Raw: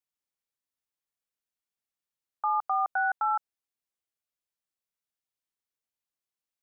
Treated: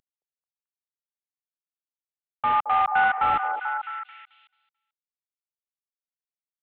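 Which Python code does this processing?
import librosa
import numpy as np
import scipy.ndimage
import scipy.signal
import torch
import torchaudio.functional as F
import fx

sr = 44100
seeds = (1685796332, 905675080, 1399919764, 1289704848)

y = fx.cvsd(x, sr, bps=16000)
y = fx.low_shelf_res(y, sr, hz=640.0, db=-7.0, q=1.5, at=(2.53, 3.23))
y = fx.echo_stepped(y, sr, ms=219, hz=590.0, octaves=0.7, feedback_pct=70, wet_db=-3.0)
y = y * librosa.db_to_amplitude(5.0)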